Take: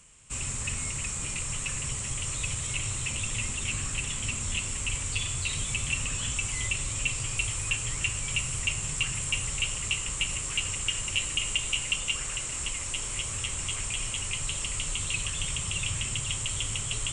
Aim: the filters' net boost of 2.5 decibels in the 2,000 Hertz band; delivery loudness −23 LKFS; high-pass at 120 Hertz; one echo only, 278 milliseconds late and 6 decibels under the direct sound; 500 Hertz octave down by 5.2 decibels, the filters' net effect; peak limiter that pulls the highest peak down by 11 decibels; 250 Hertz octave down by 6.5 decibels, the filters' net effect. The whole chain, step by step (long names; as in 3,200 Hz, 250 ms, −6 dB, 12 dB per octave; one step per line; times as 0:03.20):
high-pass filter 120 Hz
parametric band 250 Hz −9 dB
parametric band 500 Hz −4 dB
parametric band 2,000 Hz +4 dB
brickwall limiter −22 dBFS
single-tap delay 278 ms −6 dB
level +6.5 dB